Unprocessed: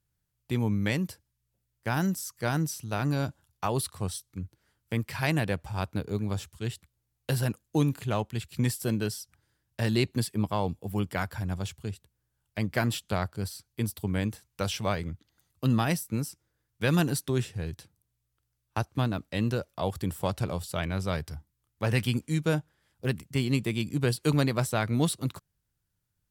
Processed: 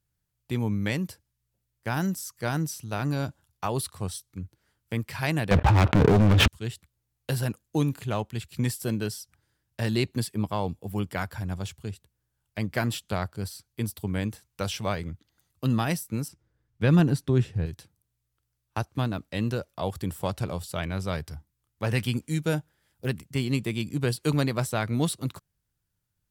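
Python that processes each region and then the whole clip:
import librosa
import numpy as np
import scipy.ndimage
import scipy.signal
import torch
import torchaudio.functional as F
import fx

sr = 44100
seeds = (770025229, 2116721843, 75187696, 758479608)

y = fx.chain(x, sr, fx.lowpass(hz=3000.0, slope=24),
    fx.leveller(passes=5),
    fx.env_flatten(amount_pct=100), at=(5.51, 6.48))
y = fx.chain(y, sr, fx.lowpass(hz=2900.0, slope=6),
    fx.low_shelf(hz=330.0, db=7.5), at=(16.28, 17.66))
y = fx.chain(y, sr, fx.high_shelf(hz=11000.0, db=8.0),
    fx.notch(hz=1100.0, q=12.0), at=(22.26, 23.08))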